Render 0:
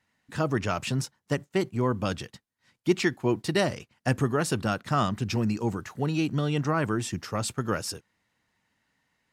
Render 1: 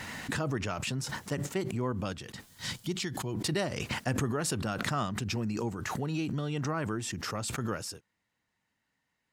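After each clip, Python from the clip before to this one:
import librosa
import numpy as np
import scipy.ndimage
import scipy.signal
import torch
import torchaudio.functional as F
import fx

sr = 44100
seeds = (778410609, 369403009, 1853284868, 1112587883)

y = fx.spec_box(x, sr, start_s=2.47, length_s=0.88, low_hz=200.0, high_hz=2900.0, gain_db=-7)
y = fx.peak_eq(y, sr, hz=7500.0, db=2.0, octaves=0.21)
y = fx.pre_swell(y, sr, db_per_s=24.0)
y = y * librosa.db_to_amplitude(-7.0)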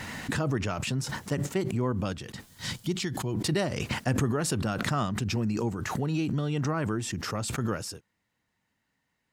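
y = fx.low_shelf(x, sr, hz=460.0, db=3.5)
y = y * librosa.db_to_amplitude(1.5)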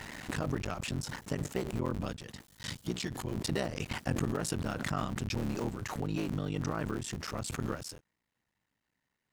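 y = fx.cycle_switch(x, sr, every=3, mode='muted')
y = y * librosa.db_to_amplitude(-4.0)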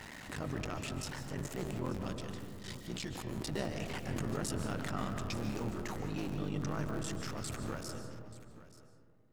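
y = fx.transient(x, sr, attack_db=-7, sustain_db=4)
y = y + 10.0 ** (-17.0 / 20.0) * np.pad(y, (int(882 * sr / 1000.0), 0))[:len(y)]
y = fx.rev_freeverb(y, sr, rt60_s=2.2, hf_ratio=0.25, predelay_ms=105, drr_db=5.5)
y = y * librosa.db_to_amplitude(-4.0)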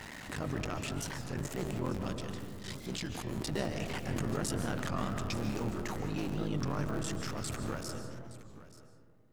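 y = fx.record_warp(x, sr, rpm=33.33, depth_cents=160.0)
y = y * librosa.db_to_amplitude(2.5)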